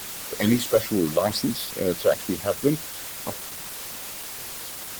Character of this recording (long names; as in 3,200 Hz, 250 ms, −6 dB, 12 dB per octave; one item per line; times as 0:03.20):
phaser sweep stages 8, 2.3 Hz, lowest notch 250–1,100 Hz
a quantiser's noise floor 6 bits, dither triangular
Opus